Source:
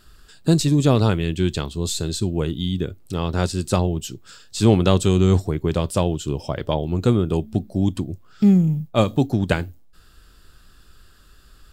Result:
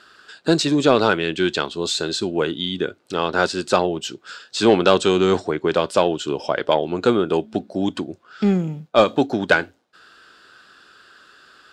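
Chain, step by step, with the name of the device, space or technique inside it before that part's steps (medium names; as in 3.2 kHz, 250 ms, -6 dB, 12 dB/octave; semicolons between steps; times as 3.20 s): intercom (band-pass 380–4800 Hz; peaking EQ 1.5 kHz +7 dB 0.26 oct; saturation -10 dBFS, distortion -20 dB); 4.79–5.81 s: low-pass 10 kHz 24 dB/octave; trim +7.5 dB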